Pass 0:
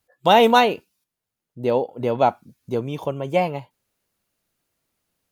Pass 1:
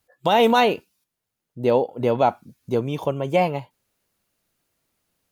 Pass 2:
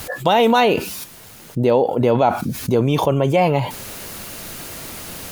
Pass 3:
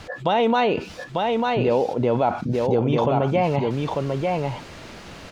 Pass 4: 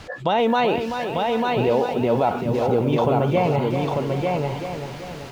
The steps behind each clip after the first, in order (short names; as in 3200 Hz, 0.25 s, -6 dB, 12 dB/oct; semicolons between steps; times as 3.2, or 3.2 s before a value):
limiter -9.5 dBFS, peak gain reduction 8 dB; gain +2 dB
fast leveller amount 70%; gain +1 dB
air absorption 140 m; echo 0.895 s -3 dB; gain -4.5 dB
lo-fi delay 0.384 s, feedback 55%, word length 8-bit, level -7.5 dB